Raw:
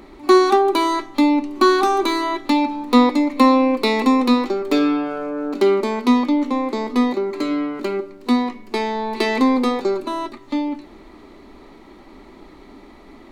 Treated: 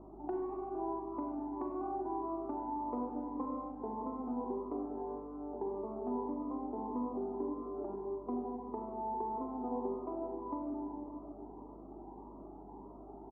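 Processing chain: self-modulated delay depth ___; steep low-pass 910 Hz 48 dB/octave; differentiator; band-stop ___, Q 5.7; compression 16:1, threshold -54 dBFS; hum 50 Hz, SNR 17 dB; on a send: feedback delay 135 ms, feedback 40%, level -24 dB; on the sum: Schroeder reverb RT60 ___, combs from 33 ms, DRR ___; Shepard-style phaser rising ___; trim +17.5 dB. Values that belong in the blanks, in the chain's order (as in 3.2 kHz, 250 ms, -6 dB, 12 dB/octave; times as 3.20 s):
0.27 ms, 550 Hz, 2.7 s, -1 dB, 1.7 Hz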